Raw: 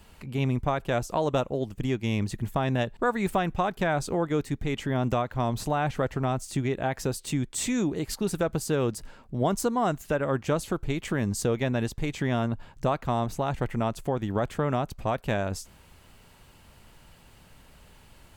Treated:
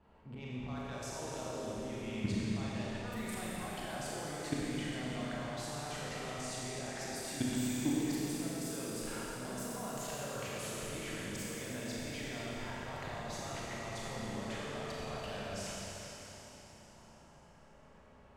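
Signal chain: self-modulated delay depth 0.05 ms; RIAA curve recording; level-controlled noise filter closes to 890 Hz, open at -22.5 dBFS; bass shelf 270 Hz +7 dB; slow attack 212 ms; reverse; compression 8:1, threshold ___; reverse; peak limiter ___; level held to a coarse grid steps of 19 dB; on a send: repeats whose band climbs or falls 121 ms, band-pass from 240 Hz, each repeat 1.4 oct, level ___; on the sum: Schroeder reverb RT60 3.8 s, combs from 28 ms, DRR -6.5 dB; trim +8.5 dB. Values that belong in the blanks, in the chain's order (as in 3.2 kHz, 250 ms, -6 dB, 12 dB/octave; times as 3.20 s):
-36 dBFS, -31 dBFS, -3 dB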